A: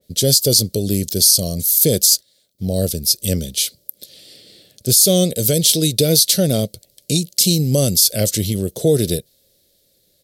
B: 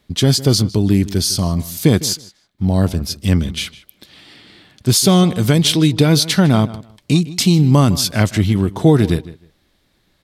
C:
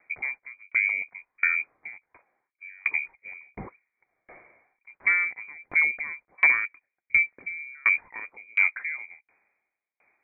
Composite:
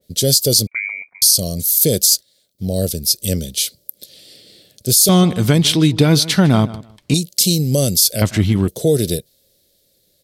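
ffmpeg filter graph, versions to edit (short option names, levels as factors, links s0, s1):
-filter_complex "[1:a]asplit=2[s0][s1];[0:a]asplit=4[s2][s3][s4][s5];[s2]atrim=end=0.672[s6];[2:a]atrim=start=0.668:end=1.222[s7];[s3]atrim=start=1.218:end=5.092[s8];[s0]atrim=start=5.088:end=7.142[s9];[s4]atrim=start=7.138:end=8.222[s10];[s1]atrim=start=8.218:end=8.682[s11];[s5]atrim=start=8.678[s12];[s6][s7]acrossfade=d=0.004:c1=hsin:c2=hsin[s13];[s13][s8]acrossfade=d=0.004:c1=hsin:c2=hsin[s14];[s14][s9]acrossfade=d=0.004:c1=hsin:c2=hsin[s15];[s15][s10]acrossfade=d=0.004:c1=hsin:c2=hsin[s16];[s16][s11]acrossfade=d=0.004:c1=hsin:c2=hsin[s17];[s17][s12]acrossfade=d=0.004:c1=hsin:c2=hsin"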